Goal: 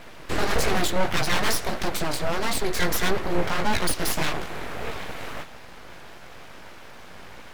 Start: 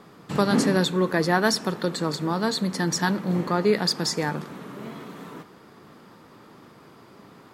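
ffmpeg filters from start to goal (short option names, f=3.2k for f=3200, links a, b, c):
-filter_complex "[0:a]equalizer=f=2k:w=3.1:g=8,asplit=2[a][b];[b]acompressor=threshold=-29dB:ratio=6,volume=-1dB[c];[a][c]amix=inputs=2:normalize=0,asoftclip=type=hard:threshold=-17dB,flanger=delay=15.5:depth=7.1:speed=1.6,aeval=exprs='abs(val(0))':c=same,volume=5dB"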